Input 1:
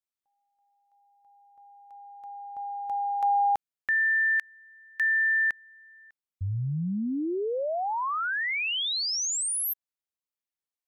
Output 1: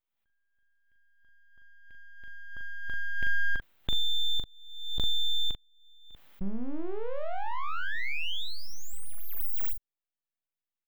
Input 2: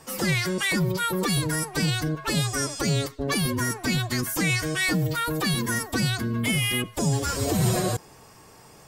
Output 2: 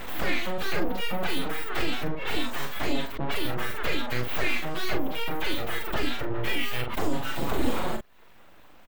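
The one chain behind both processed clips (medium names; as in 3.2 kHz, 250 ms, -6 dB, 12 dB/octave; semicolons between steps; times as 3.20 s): reverb removal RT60 0.54 s; full-wave rectifier; high-order bell 7.6 kHz -14.5 dB; doubling 41 ms -5 dB; swell ahead of each attack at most 55 dB/s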